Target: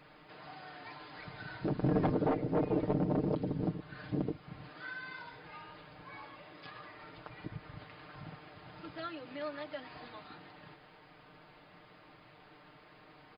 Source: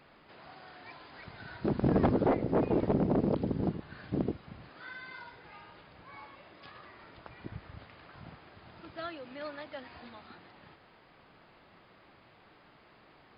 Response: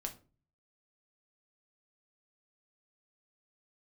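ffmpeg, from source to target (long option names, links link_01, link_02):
-filter_complex "[0:a]asplit=2[link_01][link_02];[link_02]acompressor=threshold=-43dB:ratio=6,volume=0dB[link_03];[link_01][link_03]amix=inputs=2:normalize=0,aecho=1:1:6.6:0.65,volume=-6dB"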